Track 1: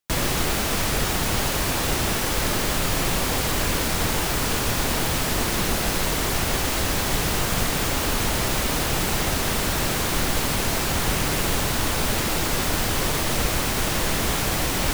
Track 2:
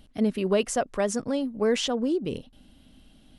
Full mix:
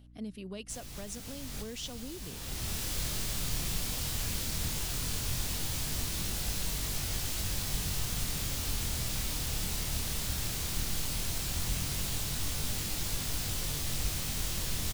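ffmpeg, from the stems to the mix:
-filter_complex "[0:a]flanger=delay=20:depth=7.5:speed=0.16,adelay=600,volume=-5dB[a];[1:a]volume=-8.5dB,asplit=2[b][c];[c]apad=whole_len=685009[d];[a][d]sidechaincompress=threshold=-41dB:ratio=8:attack=7.5:release=659[e];[e][b]amix=inputs=2:normalize=0,acrossover=split=170|3000[f][g][h];[g]acompressor=threshold=-55dB:ratio=2[i];[f][i][h]amix=inputs=3:normalize=0,aeval=exprs='val(0)+0.002*(sin(2*PI*60*n/s)+sin(2*PI*2*60*n/s)/2+sin(2*PI*3*60*n/s)/3+sin(2*PI*4*60*n/s)/4+sin(2*PI*5*60*n/s)/5)':c=same"

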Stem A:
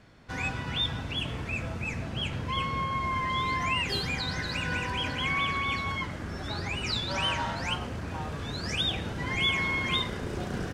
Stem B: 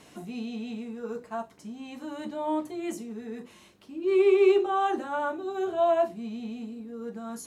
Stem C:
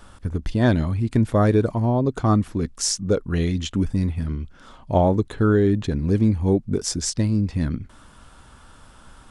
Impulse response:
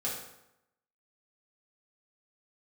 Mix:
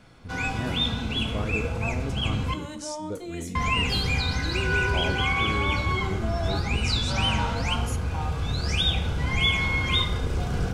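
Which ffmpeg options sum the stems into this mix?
-filter_complex "[0:a]asubboost=boost=4.5:cutoff=100,bandreject=f=1.8k:w=6.4,bandreject=f=50.31:t=h:w=4,bandreject=f=100.62:t=h:w=4,bandreject=f=150.93:t=h:w=4,bandreject=f=201.24:t=h:w=4,bandreject=f=251.55:t=h:w=4,bandreject=f=301.86:t=h:w=4,bandreject=f=352.17:t=h:w=4,bandreject=f=402.48:t=h:w=4,bandreject=f=452.79:t=h:w=4,bandreject=f=503.1:t=h:w=4,bandreject=f=553.41:t=h:w=4,bandreject=f=603.72:t=h:w=4,bandreject=f=654.03:t=h:w=4,bandreject=f=704.34:t=h:w=4,bandreject=f=754.65:t=h:w=4,bandreject=f=804.96:t=h:w=4,bandreject=f=855.27:t=h:w=4,bandreject=f=905.58:t=h:w=4,bandreject=f=955.89:t=h:w=4,bandreject=f=1.0062k:t=h:w=4,bandreject=f=1.05651k:t=h:w=4,bandreject=f=1.10682k:t=h:w=4,bandreject=f=1.15713k:t=h:w=4,bandreject=f=1.20744k:t=h:w=4,bandreject=f=1.25775k:t=h:w=4,bandreject=f=1.30806k:t=h:w=4,bandreject=f=1.35837k:t=h:w=4,bandreject=f=1.40868k:t=h:w=4,bandreject=f=1.45899k:t=h:w=4,bandreject=f=1.5093k:t=h:w=4,bandreject=f=1.55961k:t=h:w=4,bandreject=f=1.60992k:t=h:w=4,bandreject=f=1.66023k:t=h:w=4,volume=0.5dB,asplit=3[a][b][c];[a]atrim=end=2.54,asetpts=PTS-STARTPTS,afade=t=out:st=2.536:d=0.004:c=hsin[d];[b]atrim=start=2.54:end=3.55,asetpts=PTS-STARTPTS,volume=0[e];[c]atrim=start=3.55,asetpts=PTS-STARTPTS,afade=t=in:d=0.004:c=hsin[f];[d][e][f]concat=n=3:v=0:a=1,asplit=2[g][h];[h]volume=-6.5dB[i];[1:a]equalizer=f=7.1k:w=0.47:g=8,alimiter=level_in=2.5dB:limit=-24dB:level=0:latency=1,volume=-2.5dB,adelay=500,volume=-2.5dB,asplit=2[j][k];[k]volume=-16.5dB[l];[2:a]volume=-16dB,asplit=2[m][n];[n]volume=-15.5dB[o];[3:a]atrim=start_sample=2205[p];[i][l][o]amix=inputs=3:normalize=0[q];[q][p]afir=irnorm=-1:irlink=0[r];[g][j][m][r]amix=inputs=4:normalize=0"

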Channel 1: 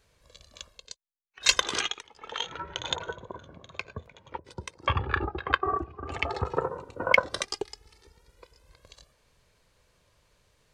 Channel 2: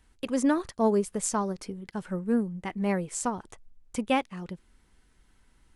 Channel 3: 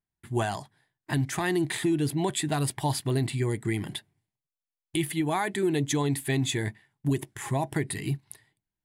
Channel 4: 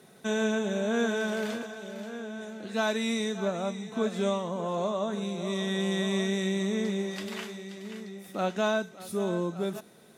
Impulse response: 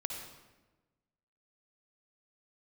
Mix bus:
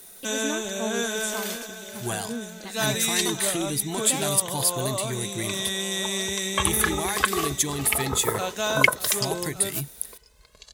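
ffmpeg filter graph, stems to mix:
-filter_complex "[0:a]aecho=1:1:4.7:0.49,adelay=1700,volume=-0.5dB[a];[1:a]volume=-8.5dB,asplit=2[b][c];[2:a]aemphasis=mode=production:type=50fm,adelay=1700,volume=-4.5dB[d];[3:a]aemphasis=mode=production:type=bsi,volume=-0.5dB[e];[c]apad=whole_len=548794[f];[a][f]sidechaincompress=threshold=-50dB:ratio=3:attack=16:release=1370[g];[g][b][d][e]amix=inputs=4:normalize=0,highshelf=f=2.6k:g=7"

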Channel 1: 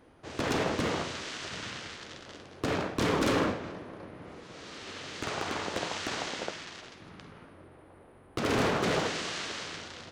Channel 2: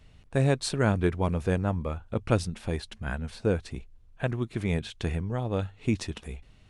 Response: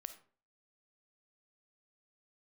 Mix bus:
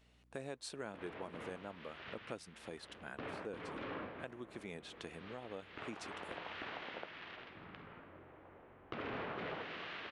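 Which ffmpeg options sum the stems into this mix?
-filter_complex "[0:a]lowpass=f=3k:w=0.5412,lowpass=f=3k:w=1.3066,lowshelf=f=500:g=-6,adelay=550,volume=-1dB[a];[1:a]highpass=290,aeval=exprs='val(0)+0.000891*(sin(2*PI*60*n/s)+sin(2*PI*2*60*n/s)/2+sin(2*PI*3*60*n/s)/3+sin(2*PI*4*60*n/s)/4+sin(2*PI*5*60*n/s)/5)':c=same,volume=-7.5dB,asplit=2[b][c];[c]apad=whole_len=470245[d];[a][d]sidechaincompress=threshold=-40dB:ratio=5:attack=27:release=949[e];[e][b]amix=inputs=2:normalize=0,acompressor=threshold=-46dB:ratio=2.5"

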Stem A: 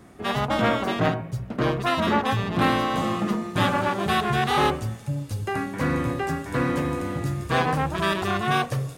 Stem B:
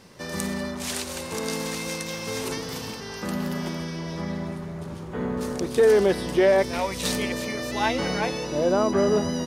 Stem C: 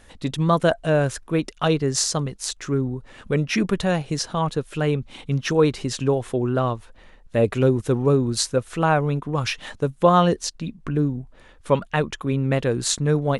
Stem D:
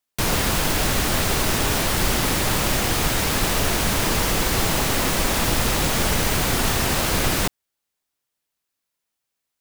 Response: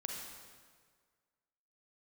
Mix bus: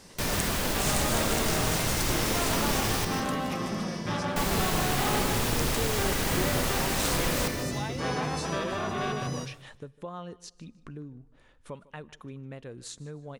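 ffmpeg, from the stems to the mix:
-filter_complex "[0:a]asoftclip=type=tanh:threshold=-17.5dB,acrossover=split=6200[a][b];[b]acompressor=threshold=-55dB:ratio=4:attack=1:release=60[c];[a][c]amix=inputs=2:normalize=0,adelay=500,volume=-8dB,asplit=2[d][e];[e]volume=-4.5dB[f];[1:a]acompressor=threshold=-31dB:ratio=6,equalizer=f=7.9k:t=o:w=1.3:g=9,volume=-3dB[g];[2:a]acompressor=threshold=-32dB:ratio=2.5,volume=-11.5dB,asplit=3[h][i][j];[i]volume=-21.5dB[k];[j]volume=-20.5dB[l];[3:a]volume=-10.5dB,asplit=3[m][n][o];[m]atrim=end=3.05,asetpts=PTS-STARTPTS,afade=t=out:st=3.046:d=0.004:c=hsin[p];[n]atrim=start=3.05:end=4.36,asetpts=PTS-STARTPTS,volume=0[q];[o]atrim=start=4.36,asetpts=PTS-STARTPTS,afade=t=in:d=0.004:c=hsin[r];[p][q][r]concat=n=3:v=0:a=1,asplit=3[s][t][u];[t]volume=-8.5dB[v];[u]volume=-7dB[w];[4:a]atrim=start_sample=2205[x];[k][v]amix=inputs=2:normalize=0[y];[y][x]afir=irnorm=-1:irlink=0[z];[f][l][w]amix=inputs=3:normalize=0,aecho=0:1:153|306|459|612:1|0.26|0.0676|0.0176[aa];[d][g][h][s][z][aa]amix=inputs=6:normalize=0"

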